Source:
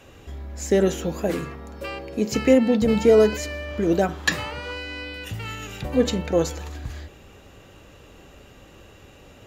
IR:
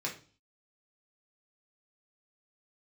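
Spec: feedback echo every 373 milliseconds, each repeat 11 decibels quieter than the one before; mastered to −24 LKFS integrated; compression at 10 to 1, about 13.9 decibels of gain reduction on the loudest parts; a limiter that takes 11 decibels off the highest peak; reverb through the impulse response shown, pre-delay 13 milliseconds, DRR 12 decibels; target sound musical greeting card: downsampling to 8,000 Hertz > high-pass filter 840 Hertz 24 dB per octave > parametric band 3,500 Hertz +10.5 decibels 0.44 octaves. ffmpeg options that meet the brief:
-filter_complex "[0:a]acompressor=threshold=-25dB:ratio=10,alimiter=limit=-24dB:level=0:latency=1,aecho=1:1:373|746|1119:0.282|0.0789|0.0221,asplit=2[link_01][link_02];[1:a]atrim=start_sample=2205,adelay=13[link_03];[link_02][link_03]afir=irnorm=-1:irlink=0,volume=-15.5dB[link_04];[link_01][link_04]amix=inputs=2:normalize=0,aresample=8000,aresample=44100,highpass=frequency=840:width=0.5412,highpass=frequency=840:width=1.3066,equalizer=frequency=3500:width_type=o:width=0.44:gain=10.5,volume=13dB"

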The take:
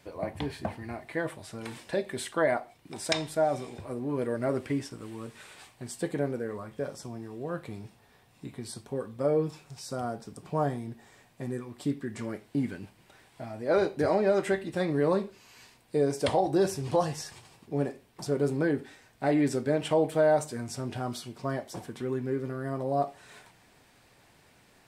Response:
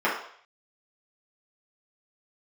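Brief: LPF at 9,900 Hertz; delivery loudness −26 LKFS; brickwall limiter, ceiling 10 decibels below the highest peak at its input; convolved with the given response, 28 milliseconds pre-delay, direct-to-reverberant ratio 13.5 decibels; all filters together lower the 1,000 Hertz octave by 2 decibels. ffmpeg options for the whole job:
-filter_complex "[0:a]lowpass=9900,equalizer=frequency=1000:width_type=o:gain=-3,alimiter=limit=-21.5dB:level=0:latency=1,asplit=2[link_01][link_02];[1:a]atrim=start_sample=2205,adelay=28[link_03];[link_02][link_03]afir=irnorm=-1:irlink=0,volume=-29.5dB[link_04];[link_01][link_04]amix=inputs=2:normalize=0,volume=8dB"

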